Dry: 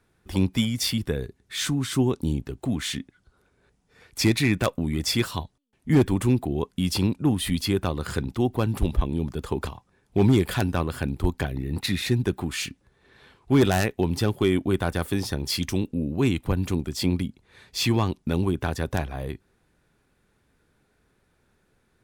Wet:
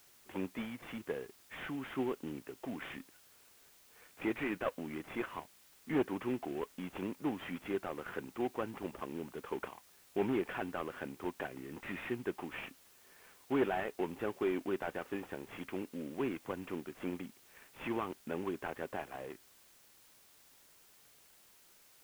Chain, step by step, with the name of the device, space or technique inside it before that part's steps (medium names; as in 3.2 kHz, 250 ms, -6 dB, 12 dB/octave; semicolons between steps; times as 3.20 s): army field radio (band-pass 360–2800 Hz; CVSD coder 16 kbps; white noise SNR 23 dB); trim -7 dB